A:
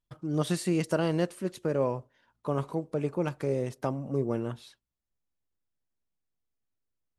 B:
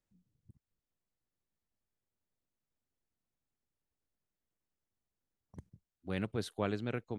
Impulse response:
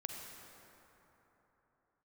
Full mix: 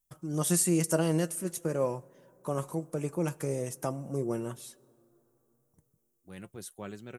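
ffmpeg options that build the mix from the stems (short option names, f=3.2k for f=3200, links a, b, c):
-filter_complex "[0:a]volume=1.5dB,asplit=3[a][b][c];[b]volume=-21dB[d];[1:a]adelay=200,volume=-3dB[e];[c]apad=whole_len=325609[f];[e][f]sidechaincompress=threshold=-47dB:ratio=8:attack=16:release=1340[g];[2:a]atrim=start_sample=2205[h];[d][h]afir=irnorm=-1:irlink=0[i];[a][g][i]amix=inputs=3:normalize=0,aexciter=amount=7.6:drive=2.8:freq=5.9k,flanger=delay=5.2:depth=1.2:regen=58:speed=0.43:shape=triangular"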